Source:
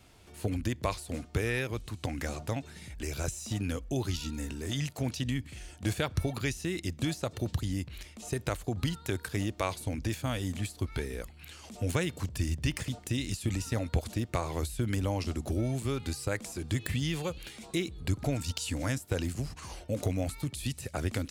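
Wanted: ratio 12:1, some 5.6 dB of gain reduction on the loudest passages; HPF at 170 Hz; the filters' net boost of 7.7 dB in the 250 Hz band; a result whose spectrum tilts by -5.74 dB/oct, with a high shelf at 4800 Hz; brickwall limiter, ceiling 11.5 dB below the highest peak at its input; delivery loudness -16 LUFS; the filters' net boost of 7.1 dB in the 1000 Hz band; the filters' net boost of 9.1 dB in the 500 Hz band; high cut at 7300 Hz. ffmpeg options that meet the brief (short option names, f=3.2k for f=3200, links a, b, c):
-af "highpass=170,lowpass=7.3k,equalizer=f=250:t=o:g=8,equalizer=f=500:t=o:g=7.5,equalizer=f=1k:t=o:g=6.5,highshelf=f=4.8k:g=-8,acompressor=threshold=-25dB:ratio=12,volume=19dB,alimiter=limit=-4.5dB:level=0:latency=1"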